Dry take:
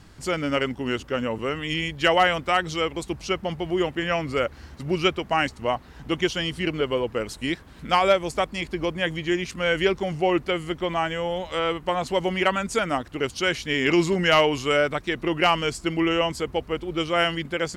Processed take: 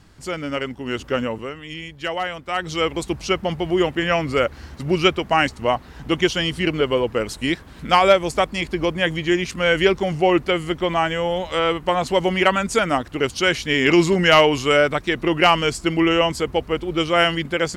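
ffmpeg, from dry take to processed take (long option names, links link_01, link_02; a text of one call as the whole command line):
ffmpeg -i in.wav -af "volume=16.5dB,afade=type=in:start_time=0.86:duration=0.25:silence=0.473151,afade=type=out:start_time=1.11:duration=0.43:silence=0.266073,afade=type=in:start_time=2.46:duration=0.42:silence=0.266073" out.wav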